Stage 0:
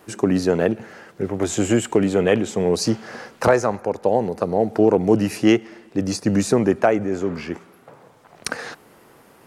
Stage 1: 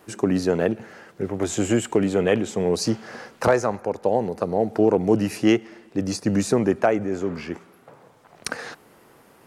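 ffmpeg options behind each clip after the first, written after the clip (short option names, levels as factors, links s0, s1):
-af "asoftclip=type=hard:threshold=0.596,volume=0.75"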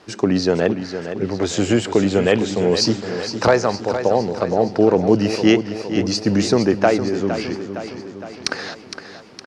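-af "lowpass=f=4900:t=q:w=2.5,aecho=1:1:462|924|1386|1848|2310|2772:0.316|0.177|0.0992|0.0555|0.0311|0.0174,volume=1.5"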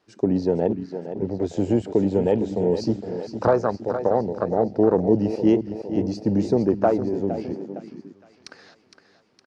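-af "afwtdn=0.112,volume=0.668"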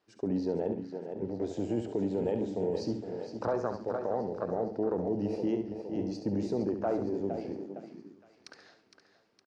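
-af "alimiter=limit=0.224:level=0:latency=1:release=37,bass=f=250:g=-3,treble=f=4000:g=-1,aecho=1:1:69|138|207|276:0.376|0.113|0.0338|0.0101,volume=0.398"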